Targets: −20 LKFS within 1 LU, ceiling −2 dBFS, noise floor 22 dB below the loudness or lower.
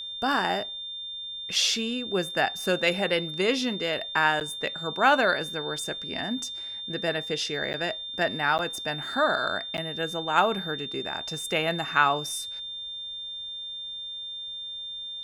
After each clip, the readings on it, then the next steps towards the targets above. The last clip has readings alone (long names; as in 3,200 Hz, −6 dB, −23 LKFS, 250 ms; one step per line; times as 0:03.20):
number of dropouts 4; longest dropout 9.4 ms; interfering tone 3,600 Hz; level of the tone −34 dBFS; integrated loudness −27.5 LKFS; sample peak −7.0 dBFS; target loudness −20.0 LKFS
→ repair the gap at 0:04.40/0:07.73/0:08.58/0:09.77, 9.4 ms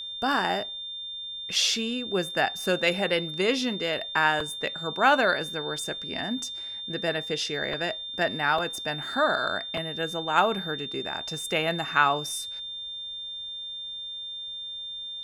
number of dropouts 0; interfering tone 3,600 Hz; level of the tone −34 dBFS
→ notch filter 3,600 Hz, Q 30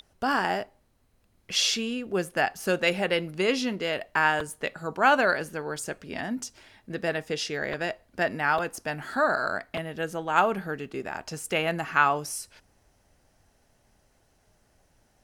interfering tone none found; integrated loudness −27.5 LKFS; sample peak −7.0 dBFS; target loudness −20.0 LKFS
→ level +7.5 dB
brickwall limiter −2 dBFS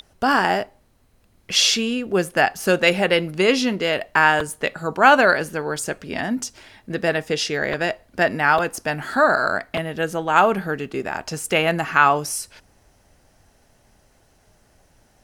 integrated loudness −20.0 LKFS; sample peak −2.0 dBFS; background noise floor −59 dBFS